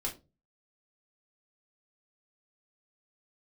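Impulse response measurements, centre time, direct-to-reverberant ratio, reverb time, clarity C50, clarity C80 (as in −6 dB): 16 ms, −2.0 dB, 0.30 s, 12.5 dB, 19.5 dB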